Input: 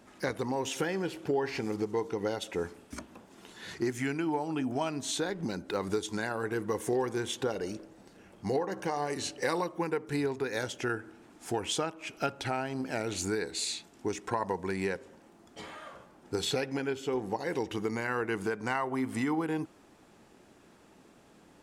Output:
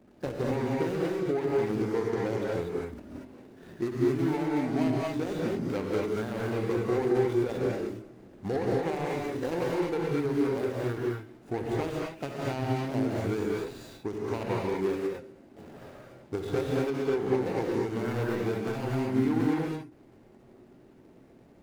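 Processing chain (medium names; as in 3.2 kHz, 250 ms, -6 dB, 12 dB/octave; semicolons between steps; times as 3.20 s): median filter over 41 samples; gated-style reverb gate 270 ms rising, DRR -3.5 dB; endings held to a fixed fall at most 120 dB/s; trim +1 dB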